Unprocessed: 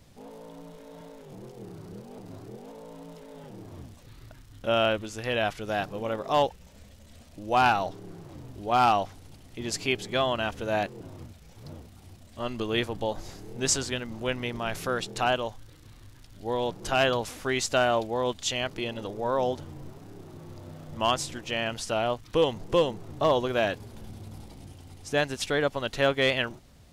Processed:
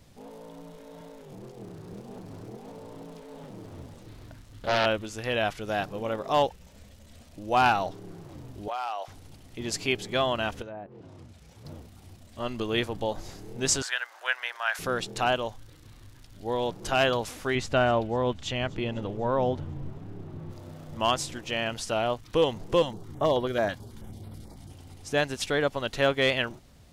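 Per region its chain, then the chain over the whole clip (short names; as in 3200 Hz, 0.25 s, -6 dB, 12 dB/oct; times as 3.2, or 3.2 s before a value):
1.39–4.86 echo 0.477 s -7 dB + Doppler distortion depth 0.94 ms
8.68–9.08 HPF 510 Hz 24 dB/oct + compressor, threshold -29 dBFS
10.62–11.65 HPF 41 Hz + treble ducked by the level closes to 980 Hz, closed at -24 dBFS + compressor 2:1, threshold -47 dBFS
13.82–14.79 inverse Chebyshev high-pass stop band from 210 Hz, stop band 60 dB + bell 1600 Hz +12 dB 0.5 oct
17.55–20.51 tone controls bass +7 dB, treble -12 dB + thin delay 0.25 s, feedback 62%, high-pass 4300 Hz, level -19 dB
22.82–24.7 notch 2600 Hz, Q 7.9 + stepped notch 9.2 Hz 420–6600 Hz
whole clip: dry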